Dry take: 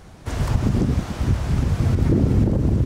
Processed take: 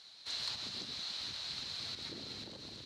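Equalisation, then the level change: band-pass 4100 Hz, Q 9.9; +12.5 dB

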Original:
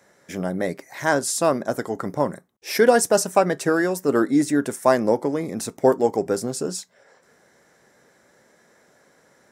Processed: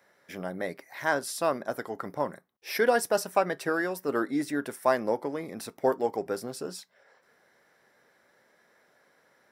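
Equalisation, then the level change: low shelf 490 Hz -9.5 dB; bell 7500 Hz -11.5 dB 0.79 oct; notch 6500 Hz, Q 15; -3.5 dB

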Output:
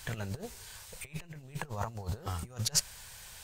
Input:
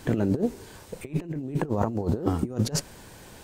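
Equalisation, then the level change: passive tone stack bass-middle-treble 10-0-10; +3.5 dB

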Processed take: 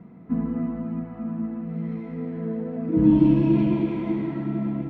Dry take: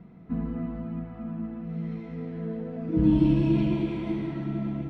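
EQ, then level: graphic EQ 125/250/500/1000/2000 Hz +4/+10/+6/+8/+6 dB; -5.5 dB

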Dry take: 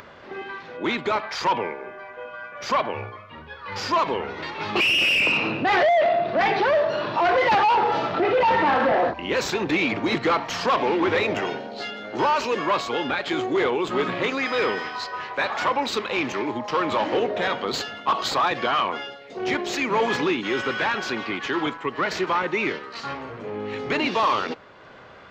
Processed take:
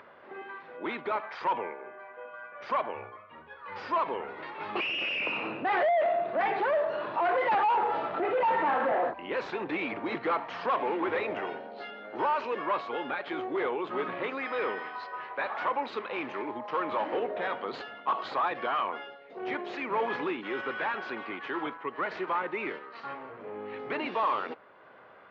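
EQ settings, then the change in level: HPF 790 Hz 6 dB/oct; air absorption 60 m; tape spacing loss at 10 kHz 40 dB; 0.0 dB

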